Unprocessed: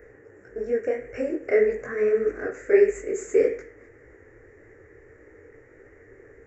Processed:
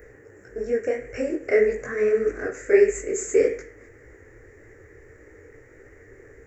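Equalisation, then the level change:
low-shelf EQ 150 Hz +6 dB
high-shelf EQ 3,600 Hz +12 dB
0.0 dB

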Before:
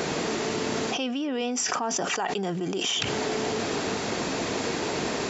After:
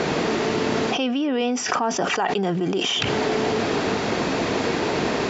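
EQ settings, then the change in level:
high-frequency loss of the air 120 metres
+6.5 dB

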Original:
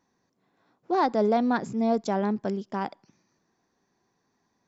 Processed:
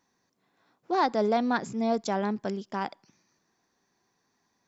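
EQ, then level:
tilt shelving filter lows −3.5 dB, about 1,100 Hz
0.0 dB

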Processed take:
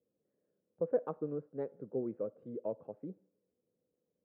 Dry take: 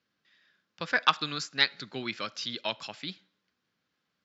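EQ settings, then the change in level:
transistor ladder low-pass 530 Hz, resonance 70%
+7.5 dB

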